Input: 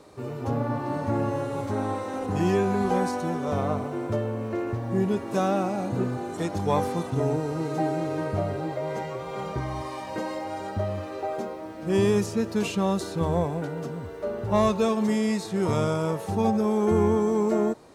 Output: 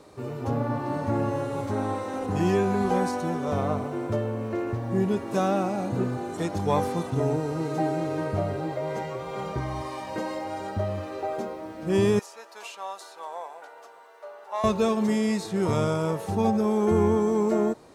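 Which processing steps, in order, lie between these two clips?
12.19–14.64 s: ladder high-pass 650 Hz, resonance 35%

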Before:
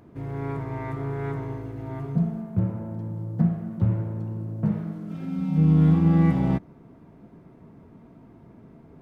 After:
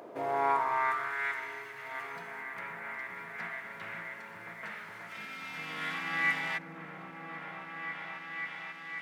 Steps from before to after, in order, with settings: delay with an opening low-pass 536 ms, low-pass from 400 Hz, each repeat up 1 oct, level 0 dB; high-pass sweep 540 Hz -> 1.9 kHz, 0.05–1.27 s; trim +6.5 dB

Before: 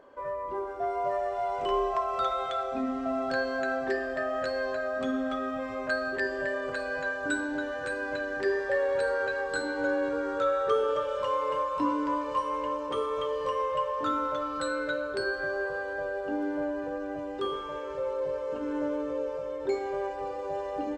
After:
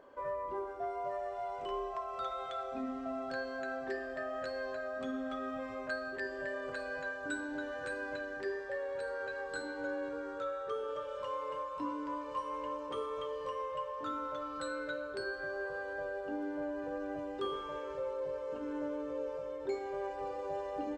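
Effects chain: gain riding 0.5 s; trim -8.5 dB

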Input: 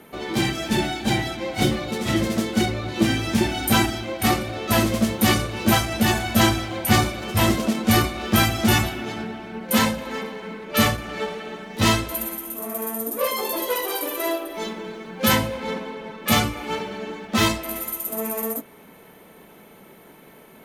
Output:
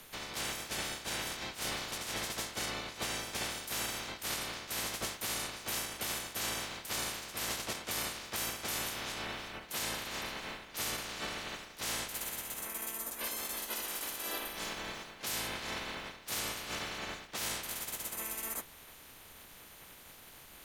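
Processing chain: spectral peaks clipped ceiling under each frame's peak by 28 dB; added noise pink -55 dBFS; reverse; compression 4:1, threshold -30 dBFS, peak gain reduction 15 dB; reverse; trim -6.5 dB

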